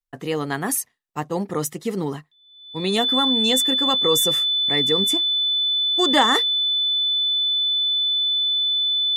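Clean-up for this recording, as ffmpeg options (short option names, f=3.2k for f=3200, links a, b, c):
-af "bandreject=f=3.5k:w=30"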